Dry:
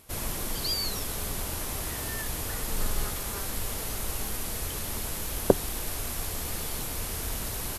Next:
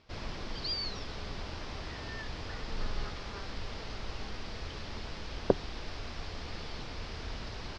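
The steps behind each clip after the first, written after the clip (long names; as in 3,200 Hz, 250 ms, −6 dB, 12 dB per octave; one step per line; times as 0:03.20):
Chebyshev low-pass filter 5,100 Hz, order 4
level −4.5 dB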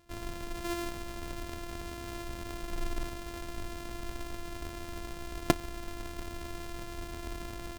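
samples sorted by size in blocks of 128 samples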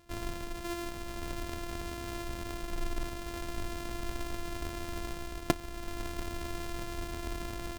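speech leveller within 4 dB 0.5 s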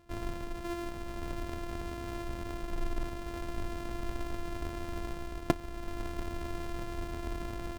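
high-shelf EQ 2,400 Hz −8.5 dB
level +1 dB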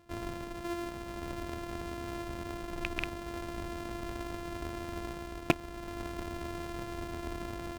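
loose part that buzzes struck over −30 dBFS, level −16 dBFS
high-pass filter 75 Hz 6 dB per octave
level +1 dB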